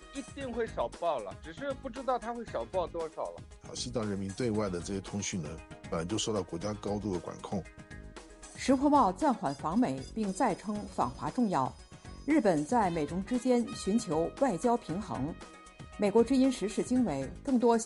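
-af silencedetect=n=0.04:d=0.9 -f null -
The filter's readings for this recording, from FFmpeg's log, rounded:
silence_start: 7.58
silence_end: 8.62 | silence_duration: 1.04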